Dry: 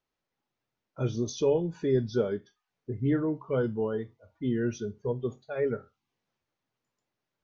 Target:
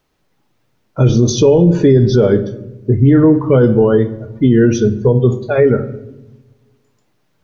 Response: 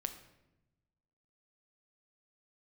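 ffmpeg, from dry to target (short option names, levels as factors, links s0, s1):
-filter_complex "[0:a]asplit=2[s0][s1];[1:a]atrim=start_sample=2205,lowshelf=f=480:g=9.5[s2];[s1][s2]afir=irnorm=-1:irlink=0,volume=0.944[s3];[s0][s3]amix=inputs=2:normalize=0,alimiter=level_in=5.01:limit=0.891:release=50:level=0:latency=1,volume=0.891"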